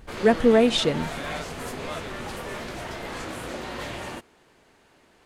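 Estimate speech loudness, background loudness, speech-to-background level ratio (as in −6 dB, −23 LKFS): −20.5 LKFS, −34.0 LKFS, 13.5 dB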